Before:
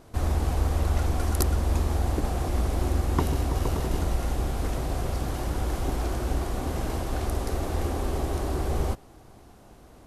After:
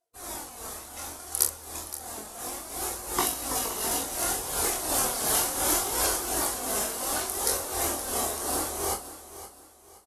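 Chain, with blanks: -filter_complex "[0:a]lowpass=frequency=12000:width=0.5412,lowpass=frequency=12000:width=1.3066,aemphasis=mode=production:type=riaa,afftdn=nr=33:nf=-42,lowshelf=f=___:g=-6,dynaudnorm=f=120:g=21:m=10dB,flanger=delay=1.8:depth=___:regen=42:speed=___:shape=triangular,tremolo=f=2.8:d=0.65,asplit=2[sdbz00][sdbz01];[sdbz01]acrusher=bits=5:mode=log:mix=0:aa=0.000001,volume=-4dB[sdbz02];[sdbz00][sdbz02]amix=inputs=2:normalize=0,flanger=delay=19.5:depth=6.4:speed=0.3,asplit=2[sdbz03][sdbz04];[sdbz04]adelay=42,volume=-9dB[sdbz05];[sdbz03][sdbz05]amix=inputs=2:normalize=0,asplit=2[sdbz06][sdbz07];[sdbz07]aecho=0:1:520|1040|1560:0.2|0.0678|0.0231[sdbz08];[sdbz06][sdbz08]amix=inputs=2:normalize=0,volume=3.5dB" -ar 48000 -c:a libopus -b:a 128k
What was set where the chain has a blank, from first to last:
480, 3, 0.66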